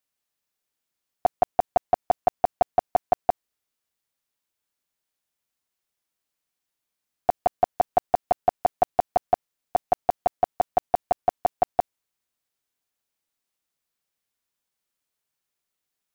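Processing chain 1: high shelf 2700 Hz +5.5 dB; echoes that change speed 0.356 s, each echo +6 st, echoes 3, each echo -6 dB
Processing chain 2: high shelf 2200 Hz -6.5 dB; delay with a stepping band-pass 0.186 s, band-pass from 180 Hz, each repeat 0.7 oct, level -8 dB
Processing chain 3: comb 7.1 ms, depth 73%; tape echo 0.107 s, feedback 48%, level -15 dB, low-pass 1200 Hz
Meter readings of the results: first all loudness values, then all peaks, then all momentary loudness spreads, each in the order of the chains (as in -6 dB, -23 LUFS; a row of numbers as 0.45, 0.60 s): -26.0, -26.5, -23.0 LUFS; -6.0, -10.5, -5.5 dBFS; 12, 16, 5 LU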